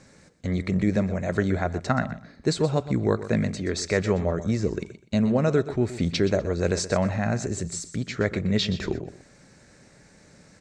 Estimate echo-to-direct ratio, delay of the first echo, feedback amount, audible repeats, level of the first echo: −13.5 dB, 124 ms, 20%, 2, −13.5 dB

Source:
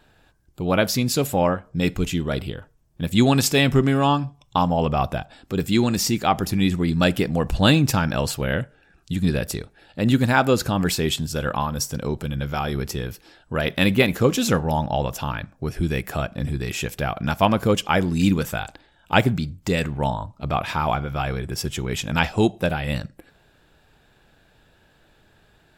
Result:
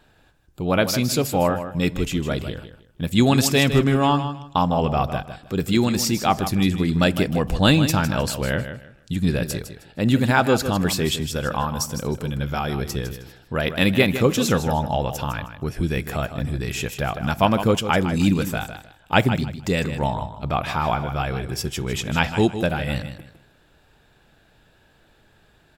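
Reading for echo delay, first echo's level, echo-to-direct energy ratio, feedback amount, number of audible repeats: 156 ms, −10.5 dB, −10.0 dB, 24%, 2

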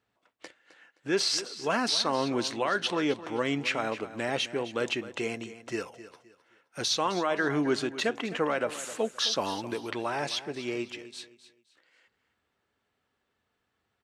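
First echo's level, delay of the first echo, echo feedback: −14.5 dB, 261 ms, 29%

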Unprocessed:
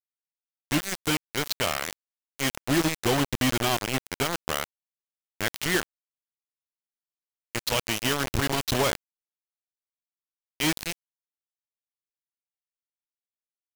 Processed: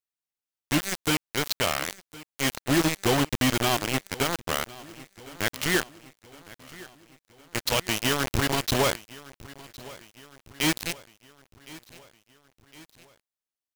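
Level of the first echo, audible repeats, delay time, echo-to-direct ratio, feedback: −20.0 dB, 3, 1,061 ms, −18.5 dB, 55%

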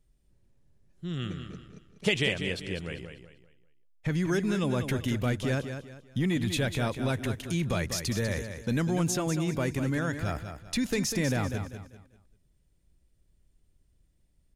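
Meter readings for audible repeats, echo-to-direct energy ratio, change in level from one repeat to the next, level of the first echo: 3, −8.0 dB, −10.0 dB, −8.5 dB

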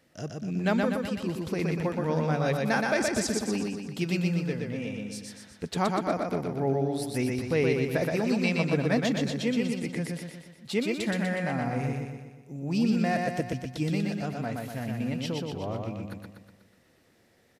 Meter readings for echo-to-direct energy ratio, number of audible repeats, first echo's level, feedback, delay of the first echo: −1.5 dB, 6, −3.0 dB, 53%, 122 ms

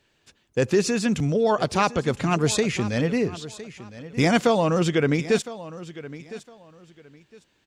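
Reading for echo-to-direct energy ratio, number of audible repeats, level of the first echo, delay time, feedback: −16.0 dB, 2, −16.0 dB, 1,010 ms, 23%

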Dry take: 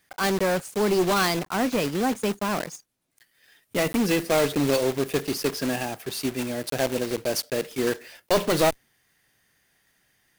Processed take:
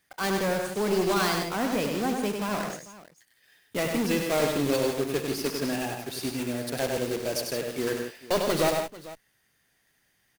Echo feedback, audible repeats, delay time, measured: repeats not evenly spaced, 4, 66 ms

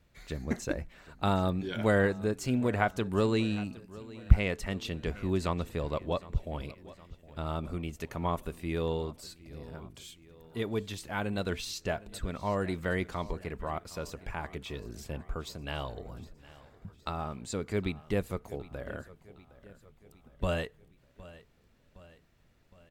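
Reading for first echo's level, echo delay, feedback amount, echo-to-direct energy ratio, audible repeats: −19.0 dB, 763 ms, 54%, −17.5 dB, 3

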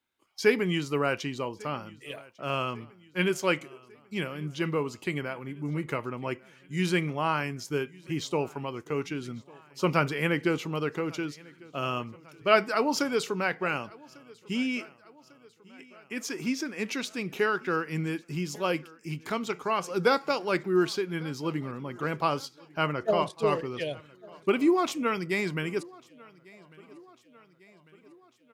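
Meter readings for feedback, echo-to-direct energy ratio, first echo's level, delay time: 57%, −22.5 dB, −24.0 dB, 1,148 ms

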